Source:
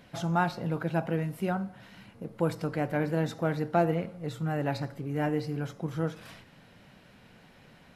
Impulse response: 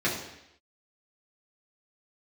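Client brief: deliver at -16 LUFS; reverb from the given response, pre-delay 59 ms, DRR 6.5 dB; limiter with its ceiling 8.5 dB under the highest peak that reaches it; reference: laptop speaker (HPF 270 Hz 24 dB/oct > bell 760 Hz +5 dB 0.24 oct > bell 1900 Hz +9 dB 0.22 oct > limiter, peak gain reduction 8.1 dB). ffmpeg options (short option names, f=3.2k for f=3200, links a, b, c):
-filter_complex "[0:a]alimiter=limit=-22.5dB:level=0:latency=1,asplit=2[a][b];[1:a]atrim=start_sample=2205,adelay=59[c];[b][c]afir=irnorm=-1:irlink=0,volume=-18.5dB[d];[a][d]amix=inputs=2:normalize=0,highpass=f=270:w=0.5412,highpass=f=270:w=1.3066,equalizer=f=760:t=o:w=0.24:g=5,equalizer=f=1.9k:t=o:w=0.22:g=9,volume=21dB,alimiter=limit=-5dB:level=0:latency=1"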